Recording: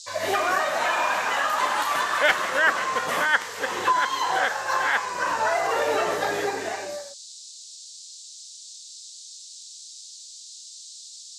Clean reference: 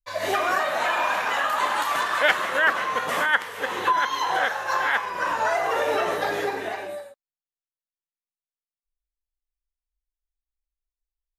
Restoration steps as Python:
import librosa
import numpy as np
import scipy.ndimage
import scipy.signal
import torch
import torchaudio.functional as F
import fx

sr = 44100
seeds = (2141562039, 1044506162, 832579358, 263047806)

y = fx.fix_declip(x, sr, threshold_db=-7.5)
y = fx.noise_reduce(y, sr, print_start_s=10.01, print_end_s=10.51, reduce_db=30.0)